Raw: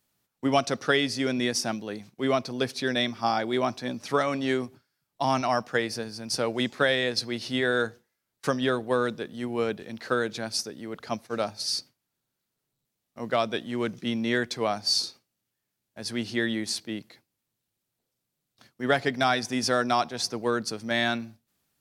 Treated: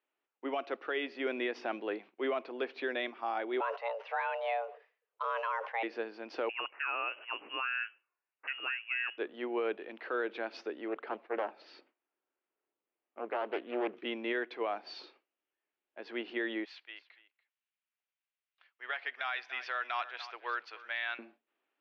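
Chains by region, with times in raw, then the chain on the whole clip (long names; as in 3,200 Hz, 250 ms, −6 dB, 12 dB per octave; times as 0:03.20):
0:03.60–0:05.83: notch filter 6,700 Hz, Q 30 + frequency shifter +330 Hz + level that may fall only so fast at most 130 dB per second
0:06.49–0:09.18: high-pass filter 720 Hz 6 dB per octave + voice inversion scrambler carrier 3,100 Hz
0:10.88–0:13.97: high-shelf EQ 2,900 Hz −10 dB + highs frequency-modulated by the lows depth 0.48 ms
0:16.65–0:21.19: high-pass filter 1,500 Hz + single-tap delay 288 ms −17.5 dB
whole clip: elliptic band-pass filter 330–2,800 Hz, stop band 50 dB; speech leveller within 5 dB 0.5 s; brickwall limiter −21.5 dBFS; level −3 dB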